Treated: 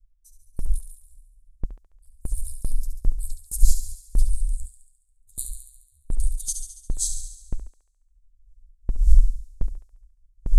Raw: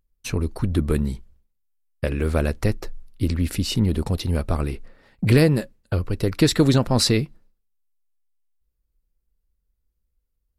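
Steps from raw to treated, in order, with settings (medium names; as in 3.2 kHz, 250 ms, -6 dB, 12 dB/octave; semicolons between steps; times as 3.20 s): pitch bend over the whole clip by -5 st starting unshifted; wind noise 220 Hz -21 dBFS; inverse Chebyshev band-stop 120–2500 Hz, stop band 60 dB; gate with hold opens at -25 dBFS; on a send: thinning echo 70 ms, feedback 61%, high-pass 520 Hz, level -8 dB; on the sum: trim +8.5 dB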